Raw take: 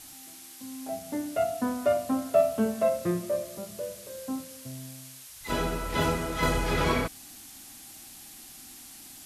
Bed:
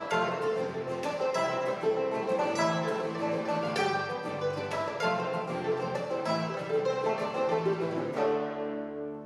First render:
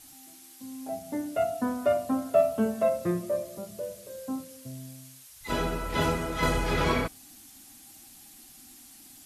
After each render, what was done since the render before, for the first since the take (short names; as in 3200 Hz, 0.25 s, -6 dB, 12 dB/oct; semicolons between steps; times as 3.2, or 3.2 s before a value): denoiser 6 dB, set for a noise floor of -48 dBFS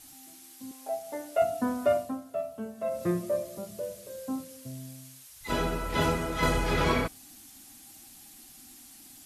0.71–1.42 resonant low shelf 350 Hz -13.5 dB, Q 1.5; 1.97–3.03 dip -11.5 dB, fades 0.31 s quadratic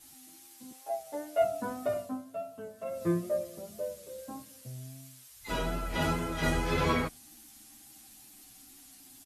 wow and flutter 35 cents; endless flanger 9.3 ms -0.3 Hz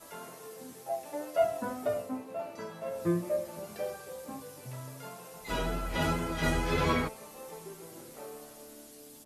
add bed -17.5 dB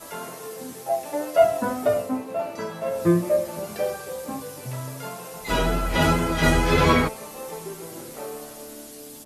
gain +10 dB